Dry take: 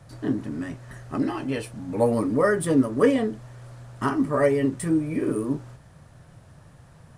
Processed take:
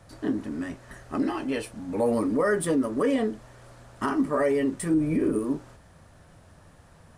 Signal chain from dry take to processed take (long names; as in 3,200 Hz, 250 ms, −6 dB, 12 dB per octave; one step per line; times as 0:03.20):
0:04.94–0:05.39: low-shelf EQ 300 Hz +10 dB
brickwall limiter −15 dBFS, peak gain reduction 8.5 dB
parametric band 130 Hz −13.5 dB 0.41 octaves